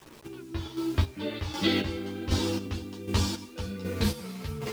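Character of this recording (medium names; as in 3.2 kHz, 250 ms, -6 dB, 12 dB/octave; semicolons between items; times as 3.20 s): a quantiser's noise floor 8-bit, dither none; chopped level 1.3 Hz, depth 65%, duty 35%; a shimmering, thickened sound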